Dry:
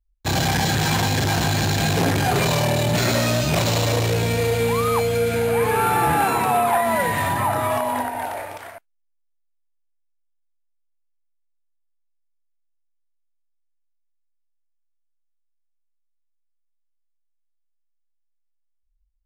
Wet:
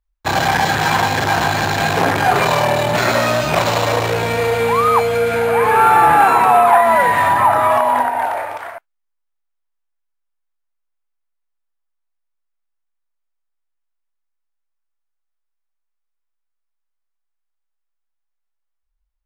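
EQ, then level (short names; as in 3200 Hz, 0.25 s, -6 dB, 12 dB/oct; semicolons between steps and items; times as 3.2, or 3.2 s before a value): bell 1100 Hz +14.5 dB 2.8 oct; high shelf 12000 Hz +3.5 dB; -4.0 dB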